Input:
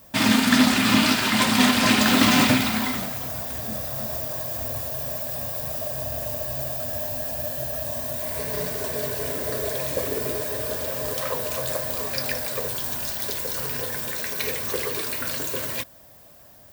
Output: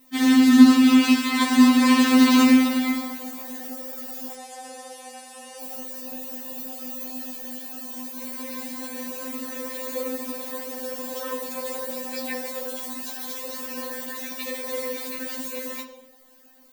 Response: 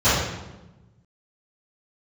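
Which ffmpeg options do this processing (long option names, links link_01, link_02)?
-filter_complex "[0:a]asettb=1/sr,asplit=3[link_01][link_02][link_03];[link_01]atrim=end=4.334[link_04];[link_02]atrim=start=4.33:end=5.61,asetpts=PTS-STARTPTS,afade=type=in:duration=0.004:curve=qsin,afade=type=out:start_time=1.276:duration=0.004:curve=qsin,highpass=frequency=300:width=0.5412,highpass=frequency=300:width=1.3066,equalizer=frequency=310:width_type=q:width=4:gain=-10,equalizer=frequency=760:width_type=q:width=4:gain=8,equalizer=frequency=2000:width_type=q:width=4:gain=6,equalizer=frequency=9700:width_type=q:width=4:gain=7,lowpass=frequency=9900:width=0.5412,lowpass=frequency=9900:width=1.3066[link_05];[link_03]atrim=start=5.606[link_06];[link_04][link_05]acrossfade=duration=0.004:curve1=hsin:curve2=qsin[link_07];[link_07][link_06]acrossfade=duration=0.004:curve1=qsin:curve2=hsin,asplit=2[link_08][link_09];[1:a]atrim=start_sample=2205,lowpass=8300[link_10];[link_09][link_10]afir=irnorm=-1:irlink=0,volume=-27dB[link_11];[link_08][link_11]amix=inputs=2:normalize=0,afftfilt=real='re*3.46*eq(mod(b,12),0)':imag='im*3.46*eq(mod(b,12),0)':win_size=2048:overlap=0.75,volume=-3dB"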